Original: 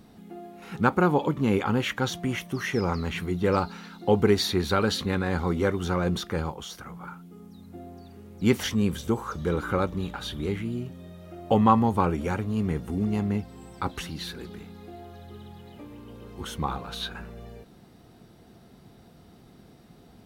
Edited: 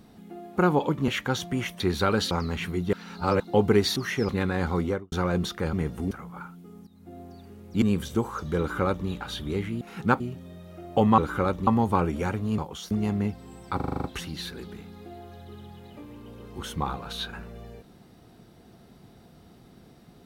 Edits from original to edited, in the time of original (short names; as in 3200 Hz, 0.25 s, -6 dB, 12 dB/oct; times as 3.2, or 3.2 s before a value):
0.56–0.95 move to 10.74
1.47–1.8 cut
2.52–2.85 swap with 4.5–5.01
3.47–3.94 reverse
5.53–5.84 studio fade out
6.45–6.78 swap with 12.63–13.01
7.54–7.88 fade in linear, from -13 dB
8.49–8.75 cut
9.52–10.01 copy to 11.72
13.86 stutter 0.04 s, 8 plays